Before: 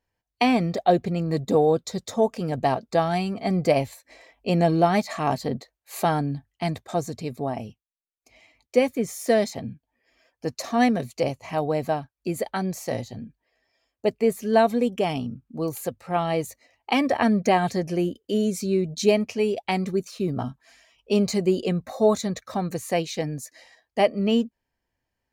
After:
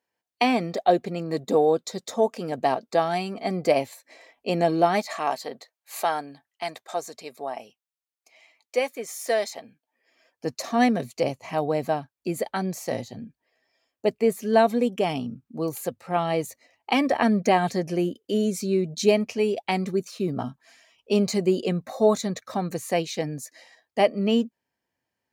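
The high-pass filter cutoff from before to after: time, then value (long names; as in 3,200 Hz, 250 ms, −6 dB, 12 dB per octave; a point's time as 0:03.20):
0:04.90 250 Hz
0:05.36 580 Hz
0:09.68 580 Hz
0:10.50 140 Hz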